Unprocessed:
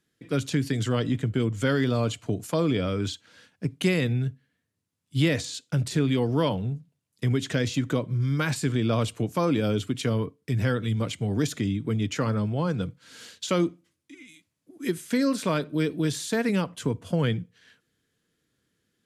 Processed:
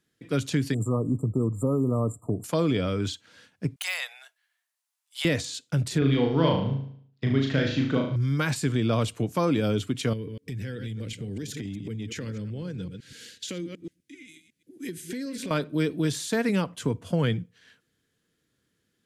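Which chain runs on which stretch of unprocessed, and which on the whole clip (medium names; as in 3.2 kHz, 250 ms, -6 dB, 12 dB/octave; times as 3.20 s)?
0.74–2.44 s: brick-wall FIR band-stop 1.3–7.1 kHz + dynamic bell 720 Hz, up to -4 dB, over -43 dBFS, Q 2.3
3.76–5.25 s: de-esser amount 65% + steep high-pass 680 Hz 48 dB/octave + treble shelf 6.3 kHz +6.5 dB
5.98–8.16 s: companding laws mixed up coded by A + low-pass 4.7 kHz 24 dB/octave + flutter echo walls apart 6.3 m, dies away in 0.59 s
10.13–15.51 s: chunks repeated in reverse 125 ms, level -11.5 dB + high-order bell 900 Hz -14.5 dB 1.3 oct + compression 5:1, threshold -31 dBFS
whole clip: none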